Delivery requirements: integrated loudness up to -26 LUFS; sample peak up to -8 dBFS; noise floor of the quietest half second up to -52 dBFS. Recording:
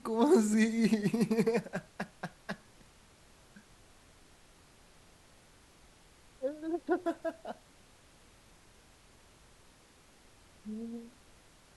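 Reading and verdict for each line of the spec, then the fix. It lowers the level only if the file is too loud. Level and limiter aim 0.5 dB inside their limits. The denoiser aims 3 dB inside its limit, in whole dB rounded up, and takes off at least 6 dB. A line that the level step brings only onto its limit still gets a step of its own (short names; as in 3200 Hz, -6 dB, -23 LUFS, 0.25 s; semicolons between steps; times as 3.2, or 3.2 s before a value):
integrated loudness -32.5 LUFS: OK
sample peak -14.5 dBFS: OK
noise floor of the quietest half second -61 dBFS: OK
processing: none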